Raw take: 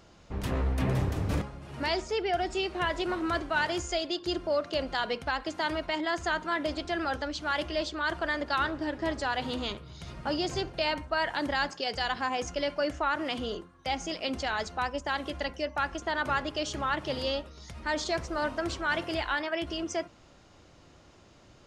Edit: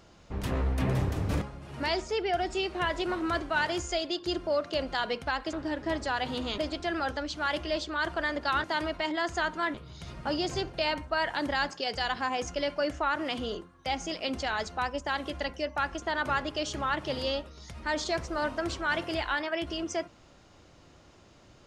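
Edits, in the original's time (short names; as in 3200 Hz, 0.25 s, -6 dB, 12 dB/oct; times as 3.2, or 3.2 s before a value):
5.53–6.63 swap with 8.69–9.74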